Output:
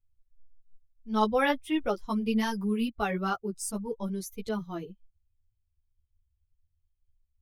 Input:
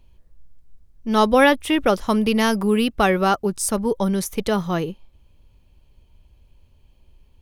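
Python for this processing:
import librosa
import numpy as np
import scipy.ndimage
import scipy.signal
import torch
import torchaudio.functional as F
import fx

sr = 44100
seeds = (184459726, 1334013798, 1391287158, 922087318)

y = fx.bin_expand(x, sr, power=1.5)
y = fx.ensemble(y, sr)
y = y * librosa.db_to_amplitude(-6.5)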